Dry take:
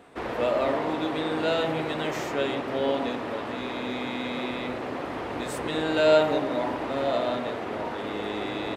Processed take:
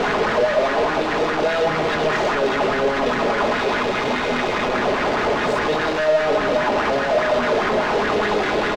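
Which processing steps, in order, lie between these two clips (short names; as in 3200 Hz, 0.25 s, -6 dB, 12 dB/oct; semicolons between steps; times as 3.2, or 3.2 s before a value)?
infinite clipping; air absorption 160 m; notches 50/100/150/200/250 Hz; comb 4.8 ms, depth 39%; LFO bell 4.9 Hz 480–1800 Hz +9 dB; gain +5.5 dB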